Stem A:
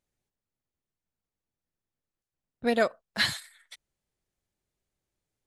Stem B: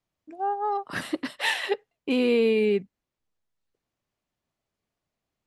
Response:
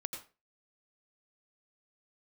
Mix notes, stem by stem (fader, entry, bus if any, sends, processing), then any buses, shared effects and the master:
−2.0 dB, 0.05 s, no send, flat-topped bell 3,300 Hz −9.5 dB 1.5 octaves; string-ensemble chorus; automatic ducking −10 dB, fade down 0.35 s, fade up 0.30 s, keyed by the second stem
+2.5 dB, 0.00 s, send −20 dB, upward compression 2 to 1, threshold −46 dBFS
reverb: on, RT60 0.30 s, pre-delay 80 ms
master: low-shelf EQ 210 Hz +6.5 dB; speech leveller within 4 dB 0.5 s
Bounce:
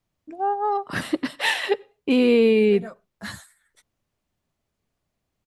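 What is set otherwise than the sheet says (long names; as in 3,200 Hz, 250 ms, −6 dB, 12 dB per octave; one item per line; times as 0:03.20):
stem B: missing upward compression 2 to 1, threshold −46 dBFS
master: missing speech leveller within 4 dB 0.5 s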